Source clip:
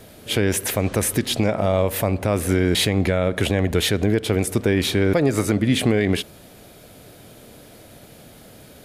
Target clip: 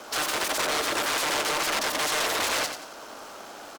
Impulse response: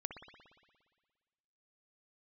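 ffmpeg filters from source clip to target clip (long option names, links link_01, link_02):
-filter_complex "[0:a]bandreject=frequency=60:width_type=h:width=6,bandreject=frequency=120:width_type=h:width=6,bandreject=frequency=180:width_type=h:width=6,aeval=exprs='val(0)*sin(2*PI*290*n/s)':channel_layout=same,acrossover=split=430|2100[link_01][link_02][link_03];[link_02]alimiter=limit=-20.5dB:level=0:latency=1:release=293[link_04];[link_01][link_04][link_03]amix=inputs=3:normalize=0,aeval=exprs='(mod(15.8*val(0)+1,2)-1)/15.8':channel_layout=same,acrossover=split=190 7200:gain=0.1 1 0.158[link_05][link_06][link_07];[link_05][link_06][link_07]amix=inputs=3:normalize=0,asoftclip=type=tanh:threshold=-29dB,asetrate=29433,aresample=44100,atempo=1.49831,asplit=2[link_08][link_09];[link_09]aecho=0:1:211|422|633|844:0.398|0.131|0.0434|0.0143[link_10];[link_08][link_10]amix=inputs=2:normalize=0,asetrate=103194,aresample=44100,volume=8dB"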